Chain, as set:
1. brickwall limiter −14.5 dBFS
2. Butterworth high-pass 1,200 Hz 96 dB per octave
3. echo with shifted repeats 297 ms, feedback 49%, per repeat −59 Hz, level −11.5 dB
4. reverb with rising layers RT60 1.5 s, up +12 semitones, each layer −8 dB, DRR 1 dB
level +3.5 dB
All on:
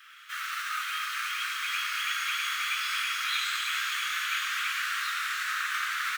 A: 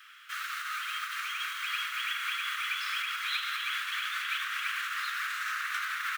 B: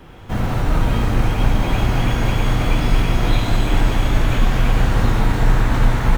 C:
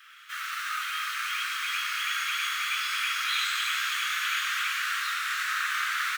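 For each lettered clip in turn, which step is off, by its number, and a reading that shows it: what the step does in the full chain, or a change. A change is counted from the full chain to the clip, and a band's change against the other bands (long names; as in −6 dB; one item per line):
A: 4, 8 kHz band −4.5 dB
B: 2, 1 kHz band +8.0 dB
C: 1, change in integrated loudness +1.5 LU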